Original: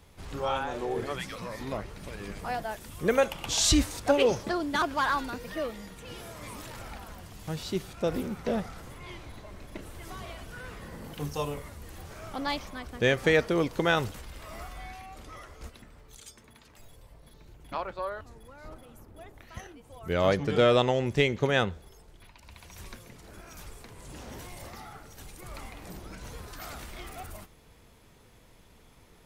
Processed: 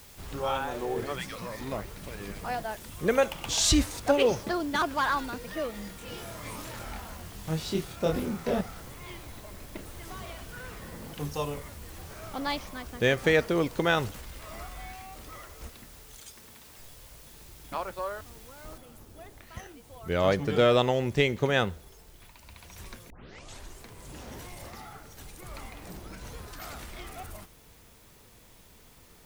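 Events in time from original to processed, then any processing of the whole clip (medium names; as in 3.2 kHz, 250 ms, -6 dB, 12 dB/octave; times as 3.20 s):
5.71–8.61 s: doubling 25 ms -2 dB
18.78 s: noise floor step -53 dB -60 dB
23.10 s: tape start 0.74 s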